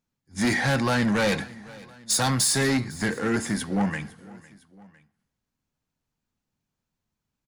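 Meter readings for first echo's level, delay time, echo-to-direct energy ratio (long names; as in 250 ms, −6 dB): −21.5 dB, 505 ms, −20.0 dB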